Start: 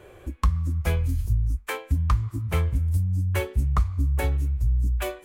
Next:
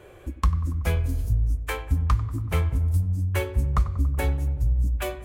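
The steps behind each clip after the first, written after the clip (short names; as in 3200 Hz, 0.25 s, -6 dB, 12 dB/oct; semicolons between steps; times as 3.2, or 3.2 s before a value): darkening echo 94 ms, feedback 78%, low-pass 1400 Hz, level -13 dB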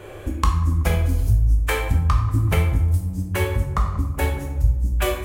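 compressor, threshold -26 dBFS, peak gain reduction 10 dB; on a send at -2 dB: reverb RT60 0.70 s, pre-delay 8 ms; on the sum: gain +8.5 dB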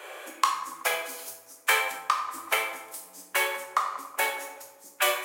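Bessel high-pass 850 Hz, order 4; in parallel at -5 dB: soft clip -18.5 dBFS, distortion -15 dB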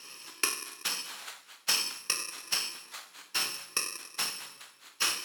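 FFT order left unsorted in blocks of 64 samples; band-pass 2000 Hz, Q 0.6; gain +4 dB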